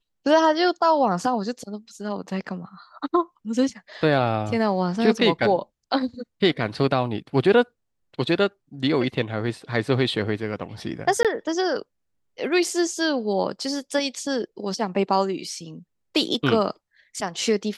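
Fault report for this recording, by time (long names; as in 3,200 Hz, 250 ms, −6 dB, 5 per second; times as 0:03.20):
0:11.23–0:11.25: drop-out 17 ms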